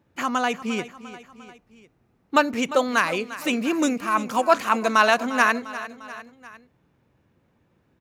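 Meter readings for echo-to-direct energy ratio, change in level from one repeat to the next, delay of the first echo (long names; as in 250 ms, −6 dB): −13.5 dB, −5.0 dB, 350 ms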